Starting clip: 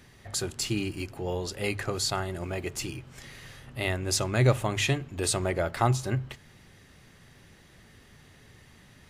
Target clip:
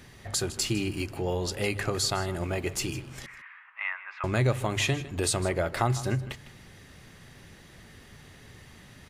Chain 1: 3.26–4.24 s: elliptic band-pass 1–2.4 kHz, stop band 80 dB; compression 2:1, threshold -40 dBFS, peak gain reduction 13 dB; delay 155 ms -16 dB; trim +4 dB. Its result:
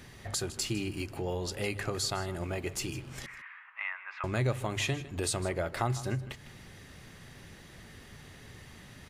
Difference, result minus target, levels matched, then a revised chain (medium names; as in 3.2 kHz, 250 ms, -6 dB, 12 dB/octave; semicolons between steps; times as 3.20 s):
compression: peak gain reduction +5 dB
3.26–4.24 s: elliptic band-pass 1–2.4 kHz, stop band 80 dB; compression 2:1, threshold -30.5 dBFS, peak gain reduction 8 dB; delay 155 ms -16 dB; trim +4 dB